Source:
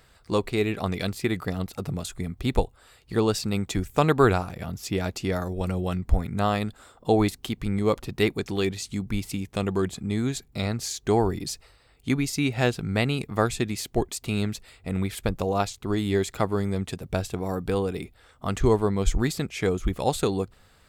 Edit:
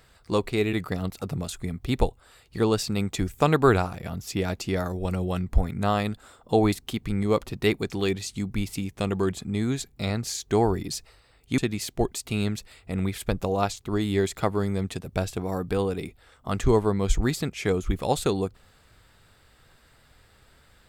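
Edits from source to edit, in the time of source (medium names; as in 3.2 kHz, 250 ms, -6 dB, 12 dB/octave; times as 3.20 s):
0.73–1.29 s: delete
12.14–13.55 s: delete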